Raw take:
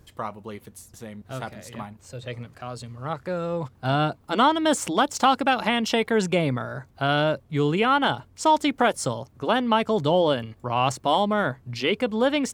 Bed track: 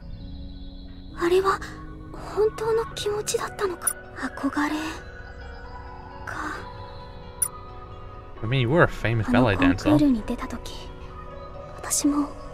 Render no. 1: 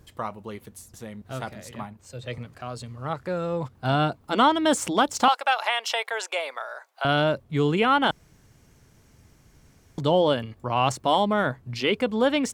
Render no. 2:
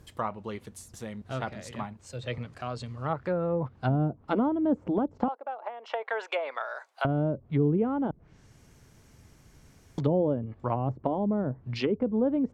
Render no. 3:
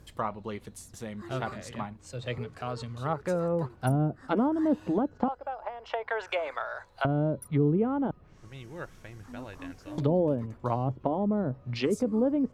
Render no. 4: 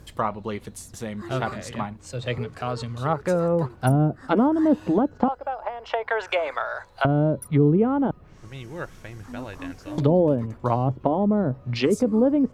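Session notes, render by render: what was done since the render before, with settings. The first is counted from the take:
0:01.71–0:02.38: multiband upward and downward expander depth 40%; 0:05.28–0:07.05: inverse Chebyshev high-pass filter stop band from 180 Hz, stop band 60 dB; 0:08.11–0:09.98: fill with room tone
treble cut that deepens with the level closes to 400 Hz, closed at −21 dBFS
mix in bed track −22.5 dB
level +6.5 dB

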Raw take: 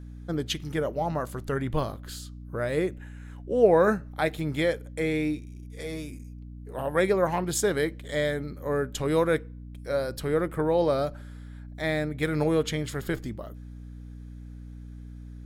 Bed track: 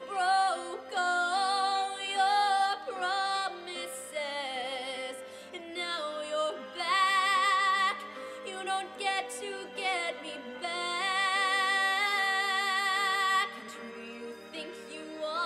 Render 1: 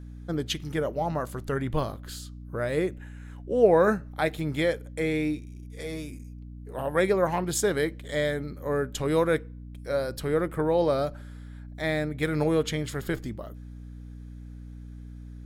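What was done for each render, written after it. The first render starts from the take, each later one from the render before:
no processing that can be heard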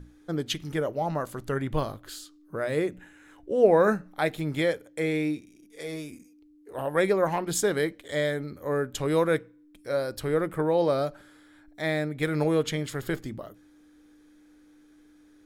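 mains-hum notches 60/120/180/240 Hz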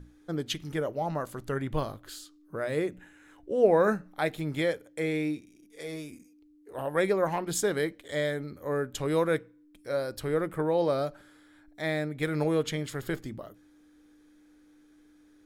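level −2.5 dB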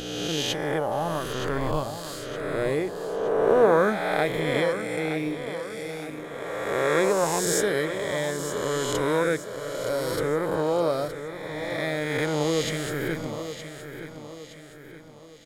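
peak hold with a rise ahead of every peak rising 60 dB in 2.07 s
repeating echo 918 ms, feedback 45%, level −10.5 dB

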